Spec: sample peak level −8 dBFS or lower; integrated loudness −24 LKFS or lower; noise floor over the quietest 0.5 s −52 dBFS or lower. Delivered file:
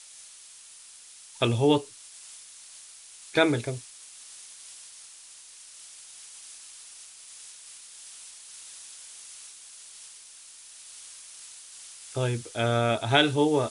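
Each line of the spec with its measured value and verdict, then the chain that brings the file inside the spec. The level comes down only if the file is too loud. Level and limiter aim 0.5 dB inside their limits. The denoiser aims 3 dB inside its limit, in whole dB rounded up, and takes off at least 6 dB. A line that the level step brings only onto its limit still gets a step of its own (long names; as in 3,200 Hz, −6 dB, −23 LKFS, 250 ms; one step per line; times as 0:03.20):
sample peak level −6.0 dBFS: out of spec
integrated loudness −25.5 LKFS: in spec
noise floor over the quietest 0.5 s −49 dBFS: out of spec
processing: broadband denoise 6 dB, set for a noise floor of −49 dBFS
brickwall limiter −8.5 dBFS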